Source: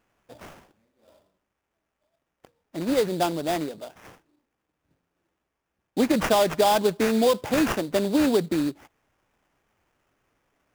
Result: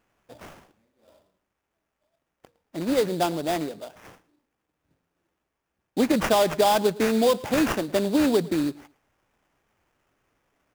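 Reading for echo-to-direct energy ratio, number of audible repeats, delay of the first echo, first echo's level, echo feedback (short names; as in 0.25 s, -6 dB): -21.0 dB, 2, 0.11 s, -21.0 dB, 20%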